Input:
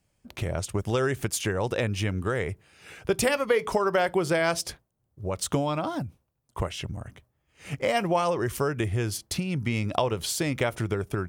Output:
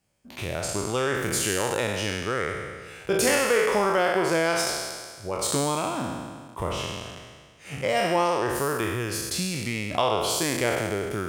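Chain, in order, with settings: spectral trails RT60 1.66 s; low shelf 140 Hz -9 dB; gain -1.5 dB

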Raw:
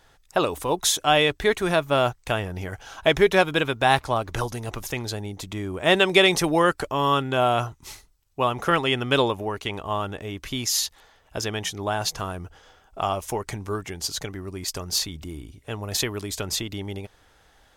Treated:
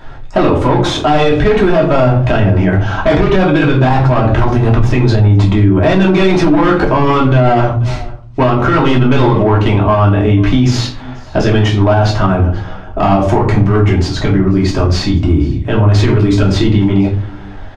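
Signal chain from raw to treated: bell 120 Hz +6 dB 0.23 oct; notch 480 Hz, Q 12; in parallel at -1 dB: compressor, threshold -37 dBFS, peak gain reduction 23 dB; on the sum: hard clip -22 dBFS, distortion -6 dB; tape spacing loss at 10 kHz 32 dB; on a send: echo 0.487 s -24 dB; on the sum: shoebox room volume 290 m³, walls furnished, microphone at 2.8 m; maximiser +16.5 dB; gain -1 dB

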